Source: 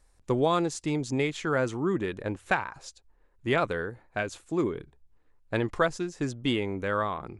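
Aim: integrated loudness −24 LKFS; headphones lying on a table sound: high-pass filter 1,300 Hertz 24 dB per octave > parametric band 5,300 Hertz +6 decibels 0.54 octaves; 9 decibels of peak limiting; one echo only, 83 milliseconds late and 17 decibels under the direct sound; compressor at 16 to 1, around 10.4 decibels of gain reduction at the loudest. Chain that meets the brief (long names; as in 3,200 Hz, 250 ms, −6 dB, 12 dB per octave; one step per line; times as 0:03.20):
downward compressor 16 to 1, threshold −30 dBFS
brickwall limiter −27 dBFS
high-pass filter 1,300 Hz 24 dB per octave
parametric band 5,300 Hz +6 dB 0.54 octaves
single-tap delay 83 ms −17 dB
level +20 dB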